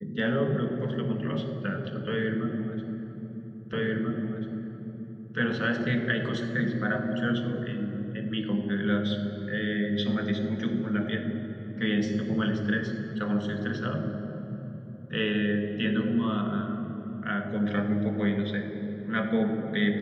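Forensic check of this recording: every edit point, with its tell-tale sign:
0:03.73: the same again, the last 1.64 s

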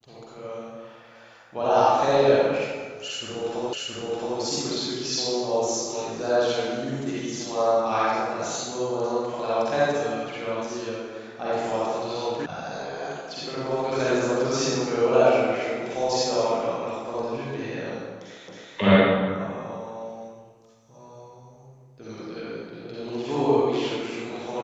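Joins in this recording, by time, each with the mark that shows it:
0:03.73: the same again, the last 0.67 s
0:12.46: cut off before it has died away
0:18.48: the same again, the last 0.27 s

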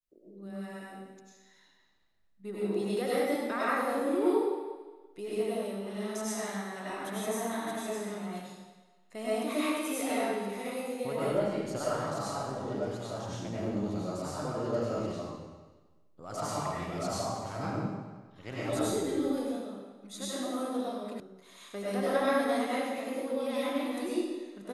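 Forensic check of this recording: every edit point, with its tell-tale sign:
0:21.20: cut off before it has died away

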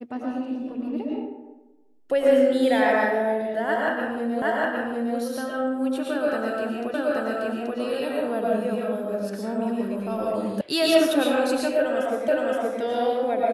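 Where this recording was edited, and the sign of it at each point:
0:04.42: the same again, the last 0.76 s
0:06.94: the same again, the last 0.83 s
0:10.61: cut off before it has died away
0:12.28: the same again, the last 0.52 s

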